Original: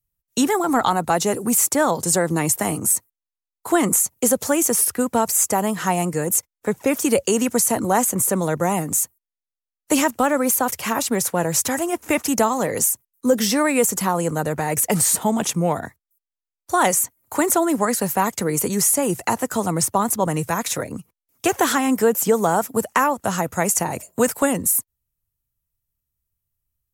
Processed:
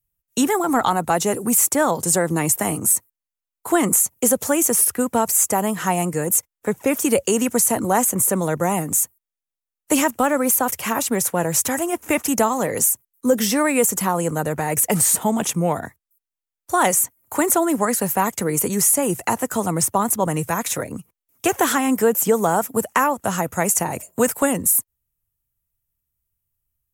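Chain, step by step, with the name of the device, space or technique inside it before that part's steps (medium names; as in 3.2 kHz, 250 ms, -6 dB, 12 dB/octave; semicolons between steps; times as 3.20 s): exciter from parts (in parallel at -6.5 dB: high-pass 2.9 kHz 6 dB/octave + saturation -13.5 dBFS, distortion -17 dB + high-pass 3.6 kHz 24 dB/octave)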